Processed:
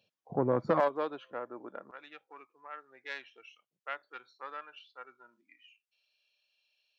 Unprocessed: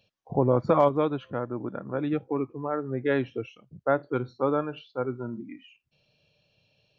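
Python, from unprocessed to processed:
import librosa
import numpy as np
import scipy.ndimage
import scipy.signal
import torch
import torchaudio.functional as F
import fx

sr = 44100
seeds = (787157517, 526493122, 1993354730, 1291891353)

y = fx.self_delay(x, sr, depth_ms=0.11)
y = fx.highpass(y, sr, hz=fx.steps((0.0, 150.0), (0.8, 470.0), (1.91, 1500.0)), slope=12)
y = F.gain(torch.from_numpy(y), -5.5).numpy()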